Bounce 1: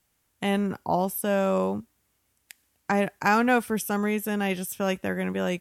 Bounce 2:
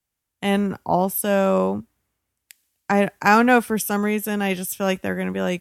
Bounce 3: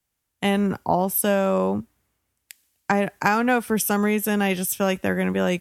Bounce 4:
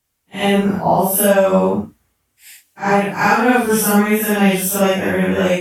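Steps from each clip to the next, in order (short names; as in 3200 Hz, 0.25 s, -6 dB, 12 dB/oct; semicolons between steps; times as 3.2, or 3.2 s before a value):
three-band expander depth 40%; gain +5 dB
compressor 6:1, threshold -19 dBFS, peak gain reduction 10 dB; gain +3 dB
phase scrambler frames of 0.2 s; gain +7 dB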